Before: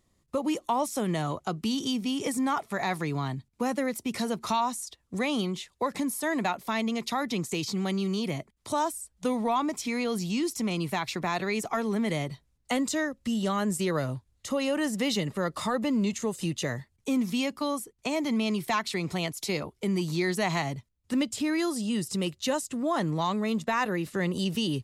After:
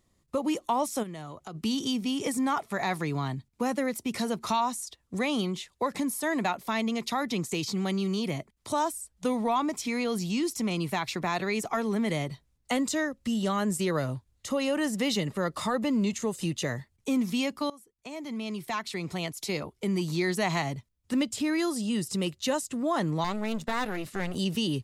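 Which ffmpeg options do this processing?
-filter_complex "[0:a]asplit=3[a][b][c];[a]afade=t=out:st=1.02:d=0.02[d];[b]acompressor=threshold=-42dB:ratio=2.5:attack=3.2:release=140:knee=1:detection=peak,afade=t=in:st=1.02:d=0.02,afade=t=out:st=1.54:d=0.02[e];[c]afade=t=in:st=1.54:d=0.02[f];[d][e][f]amix=inputs=3:normalize=0,asettb=1/sr,asplit=3[g][h][i];[g]atrim=end=23.244[j];[h]atrim=start=23.24:end=24.36,asetpts=PTS-STARTPTS,afade=t=in:d=0.004:c=qsin,afade=t=out:st=1.116:d=0.004:c=qsin,aeval=exprs='clip(val(0),-1,0.01)':c=same[k];[i]atrim=start=24.356[l];[j][k]acrossfade=d=0.004:c1=hsin:c2=qsin[m];[m][l]acrossfade=d=0.004:c1=qsin:c2=hsin,asplit=2[n][o];[n]atrim=end=17.7,asetpts=PTS-STARTPTS,afade=t=out:st=17.696:d=0.004:c=hsin:silence=0.0891251[p];[o]atrim=start=17.7,asetpts=PTS-STARTPTS,afade=t=in:d=2.9:c=qsin:silence=0.0891251[q];[p][q]concat=n=2:v=0:a=1"

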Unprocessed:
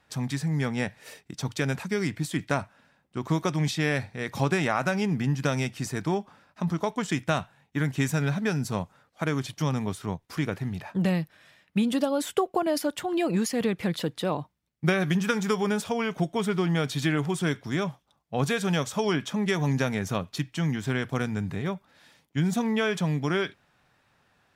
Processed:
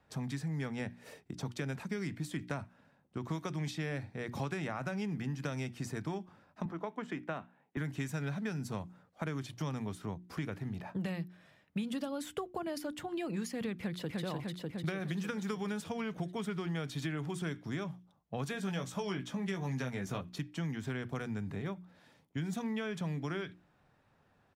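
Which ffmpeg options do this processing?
-filter_complex "[0:a]asettb=1/sr,asplit=3[a][b][c];[a]atrim=end=6.654[d];[b]atrim=start=6.65:end=7.77,asetpts=PTS-STARTPTS,afade=t=in:d=0.004:c=qsin,afade=t=out:st=1.116:d=0.004:c=qsin,acrossover=split=230 2800:gain=0.0631 1 0.178[e][f][g];[e][f][g]amix=inputs=3:normalize=0[h];[c]atrim=start=7.766[i];[d][h]acrossfade=d=0.004:c1=hsin:c2=qsin[j];[j][i]acrossfade=d=0.004:c1=qsin:c2=hsin,asplit=2[k][l];[l]afade=t=in:st=13.73:d=0.01,afade=t=out:st=14.22:d=0.01,aecho=0:1:300|600|900|1200|1500|1800|2100|2400|2700|3000|3300:0.841395|0.546907|0.355489|0.231068|0.150194|0.0976263|0.0634571|0.0412471|0.0268106|0.0174269|0.0113275[m];[k][m]amix=inputs=2:normalize=0,asettb=1/sr,asplit=3[n][o][p];[n]atrim=end=18.514[q];[o]atrim=start=18.51:end=20.21,asetpts=PTS-STARTPTS,afade=t=in:d=0.004:c=qsin,afade=t=out:st=1.696:d=0.004:c=qsin,asplit=2[r][s];[s]adelay=16,volume=-5.5dB[t];[r][t]amix=inputs=2:normalize=0,atrim=end_sample=74970[u];[p]atrim=start=20.206[v];[q][u]acrossfade=d=0.004:c1=hsin:c2=qsin[w];[w][v]acrossfade=d=0.004:c1=qsin:c2=hsin,tiltshelf=f=1.2k:g=6,bandreject=f=60:t=h:w=6,bandreject=f=120:t=h:w=6,bandreject=f=180:t=h:w=6,bandreject=f=240:t=h:w=6,bandreject=f=300:t=h:w=6,bandreject=f=360:t=h:w=6,acrossover=split=180|1300[x][y][z];[x]acompressor=threshold=-37dB:ratio=4[aa];[y]acompressor=threshold=-35dB:ratio=4[ab];[z]acompressor=threshold=-36dB:ratio=4[ac];[aa][ab][ac]amix=inputs=3:normalize=0,volume=-5.5dB"

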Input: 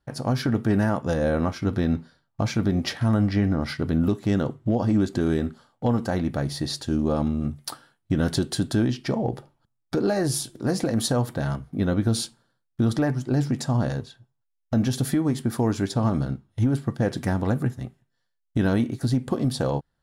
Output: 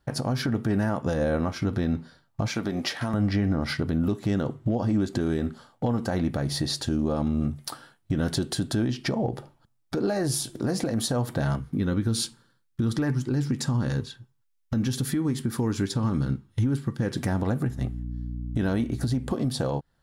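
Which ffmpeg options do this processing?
-filter_complex "[0:a]asettb=1/sr,asplit=3[a][b][c];[a]atrim=end=2.484[d];[b]atrim=start=2.48:end=3.14,asetpts=PTS-STARTPTS,afade=t=in:d=0.004:c=qsin,afade=t=out:st=0.656:d=0.004:c=qsin,highpass=f=450:p=1[e];[c]atrim=start=3.136[f];[d][e]acrossfade=d=0.004:c1=hsin:c2=qsin[g];[g][f]acrossfade=d=0.004:c1=qsin:c2=hsin,asettb=1/sr,asplit=3[h][i][j];[h]atrim=end=11.604[k];[i]atrim=start=11.6:end=17.17,asetpts=PTS-STARTPTS,afade=t=in:d=0.004:c=qsin,afade=t=out:st=5.566:d=0.004:c=qsin,equalizer=f=670:t=o:w=0.46:g=-13[l];[j]atrim=start=17.166[m];[k][l]acrossfade=d=0.004:c1=hsin:c2=qsin[n];[n][m]acrossfade=d=0.004:c1=qsin:c2=hsin,asettb=1/sr,asplit=3[o][p][q];[o]atrim=end=17.684[r];[p]atrim=start=17.68:end=19.33,asetpts=PTS-STARTPTS,afade=t=in:d=0.004:c=qsin,afade=t=out:st=1.646:d=0.004:c=qsin,aeval=exprs='val(0)+0.0141*(sin(2*PI*60*n/s)+sin(2*PI*2*60*n/s)/2+sin(2*PI*3*60*n/s)/3+sin(2*PI*4*60*n/s)/4+sin(2*PI*5*60*n/s)/5)':c=same[s];[q]atrim=start=19.326[t];[r][s]acrossfade=d=0.004:c1=hsin:c2=qsin[u];[u][t]acrossfade=d=0.004:c1=qsin:c2=hsin,acompressor=threshold=-30dB:ratio=2,alimiter=limit=-23dB:level=0:latency=1:release=161,volume=6dB"

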